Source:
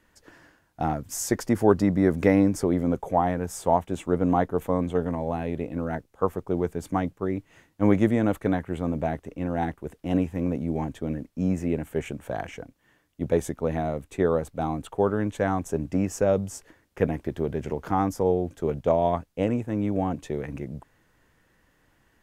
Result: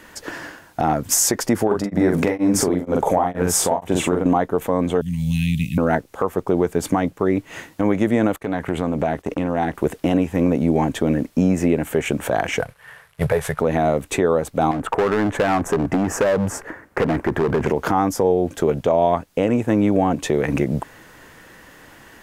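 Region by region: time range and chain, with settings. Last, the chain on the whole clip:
1.67–4.26 s: compression 2.5:1, threshold -22 dBFS + doubling 44 ms -3 dB + tremolo of two beating tones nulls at 2.1 Hz
5.01–5.78 s: elliptic band-stop 180–2700 Hz + treble shelf 8 kHz +8.5 dB
8.36–9.75 s: gate -47 dBFS, range -16 dB + compression 3:1, threshold -38 dBFS + loudspeaker Doppler distortion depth 0.1 ms
12.60–13.60 s: CVSD coder 64 kbps + FFT filter 150 Hz 0 dB, 300 Hz -28 dB, 430 Hz -4 dB, 740 Hz -2 dB, 1.6 kHz +3 dB, 6.7 kHz -12 dB, 11 kHz -3 dB
14.71–17.67 s: resonant high shelf 2.4 kHz -12 dB, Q 1.5 + compression, threshold -26 dBFS + hard clipper -31.5 dBFS
whole clip: bass shelf 140 Hz -11 dB; compression 4:1, threshold -36 dBFS; loudness maximiser +26.5 dB; trim -5.5 dB

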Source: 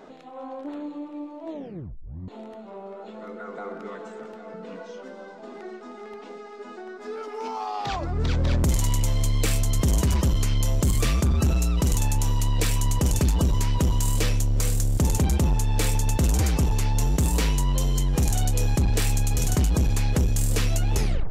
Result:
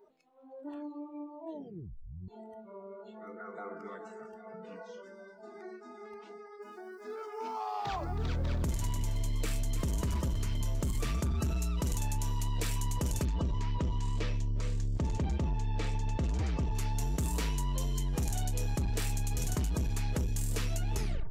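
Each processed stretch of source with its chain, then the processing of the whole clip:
6.30–11.18 s: treble shelf 2.7 kHz -3 dB + bit-crushed delay 321 ms, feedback 35%, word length 8-bit, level -12 dB
13.25–16.75 s: distance through air 140 m + band-stop 1.5 kHz, Q 17
whole clip: spectral noise reduction 20 dB; dynamic bell 1 kHz, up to +3 dB, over -46 dBFS, Q 1.3; compression, threshold -21 dBFS; trim -7.5 dB

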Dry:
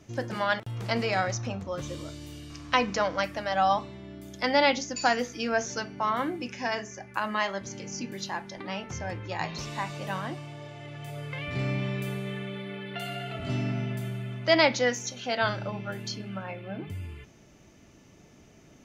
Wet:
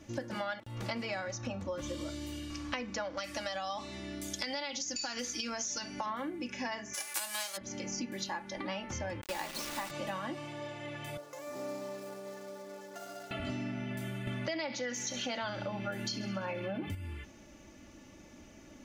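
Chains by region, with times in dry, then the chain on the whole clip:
3.17–6.06 s: peaking EQ 7.1 kHz +14.5 dB 2.5 oct + compression 4:1, threshold -25 dBFS
6.93–7.56 s: formants flattened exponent 0.3 + high-pass 470 Hz + peaking EQ 9.3 kHz +11.5 dB 1.9 oct
9.21–9.91 s: high-pass 180 Hz 24 dB/octave + word length cut 6-bit, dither none
11.17–13.31 s: median filter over 15 samples + high-pass 480 Hz + peaking EQ 2.1 kHz -13 dB 1.6 oct
14.27–16.95 s: feedback echo behind a high-pass 68 ms, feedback 64%, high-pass 2.1 kHz, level -16 dB + level flattener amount 50%
whole clip: comb 3.5 ms, depth 59%; compression 10:1, threshold -34 dBFS

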